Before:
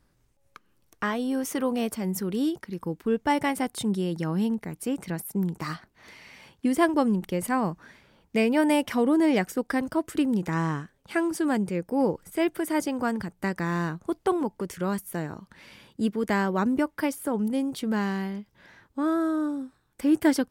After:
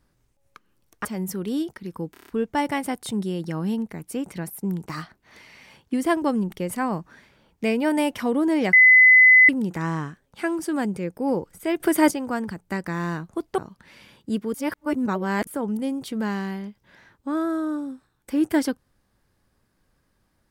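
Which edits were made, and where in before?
0:01.05–0:01.92: remove
0:03.00: stutter 0.03 s, 6 plays
0:09.45–0:10.21: beep over 2,020 Hz −9 dBFS
0:12.52–0:12.83: clip gain +8.5 dB
0:14.30–0:15.29: remove
0:16.25–0:17.18: reverse

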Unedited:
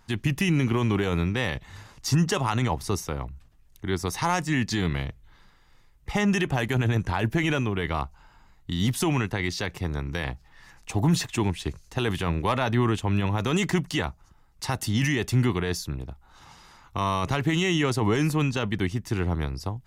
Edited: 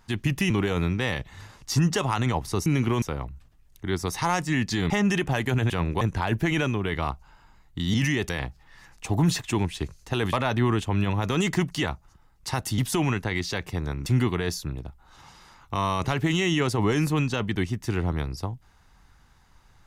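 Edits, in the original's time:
0:00.50–0:00.86: move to 0:03.02
0:04.90–0:06.13: remove
0:08.86–0:10.14: swap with 0:14.94–0:15.29
0:12.18–0:12.49: move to 0:06.93

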